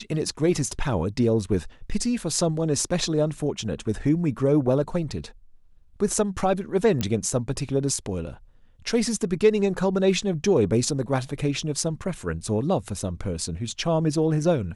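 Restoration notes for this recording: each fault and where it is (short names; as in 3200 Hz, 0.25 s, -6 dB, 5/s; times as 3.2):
7.01 pop -12 dBFS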